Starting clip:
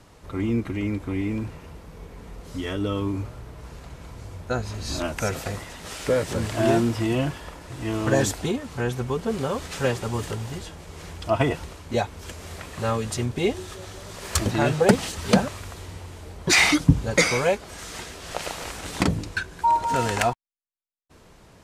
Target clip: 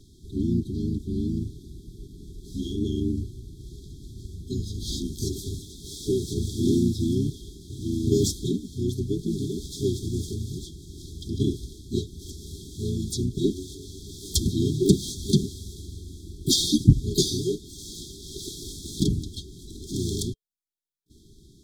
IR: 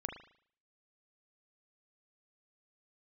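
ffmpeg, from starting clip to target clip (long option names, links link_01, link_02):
-filter_complex "[0:a]asplit=3[link_01][link_02][link_03];[link_02]asetrate=33038,aresample=44100,atempo=1.33484,volume=-1dB[link_04];[link_03]asetrate=88200,aresample=44100,atempo=0.5,volume=-14dB[link_05];[link_01][link_04][link_05]amix=inputs=3:normalize=0,aeval=exprs='1.19*(cos(1*acos(clip(val(0)/1.19,-1,1)))-cos(1*PI/2))+0.0211*(cos(4*acos(clip(val(0)/1.19,-1,1)))-cos(4*PI/2))':channel_layout=same,afftfilt=real='re*(1-between(b*sr/4096,420,3200))':imag='im*(1-between(b*sr/4096,420,3200))':win_size=4096:overlap=0.75,volume=-2.5dB"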